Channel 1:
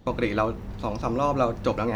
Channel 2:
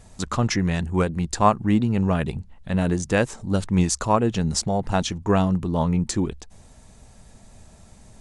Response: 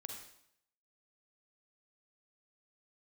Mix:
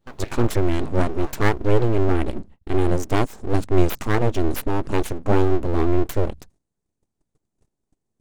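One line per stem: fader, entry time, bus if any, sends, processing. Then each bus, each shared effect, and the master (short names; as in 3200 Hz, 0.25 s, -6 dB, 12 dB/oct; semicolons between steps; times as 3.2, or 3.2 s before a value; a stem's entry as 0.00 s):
-9.5 dB, 0.00 s, no send, AGC gain up to 9 dB; noise-modulated level; auto duck -10 dB, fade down 1.75 s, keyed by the second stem
-4.0 dB, 0.00 s, no send, gate -41 dBFS, range -33 dB; bell 170 Hz +11.5 dB 2.4 oct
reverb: off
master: high shelf 5900 Hz +3.5 dB; full-wave rectifier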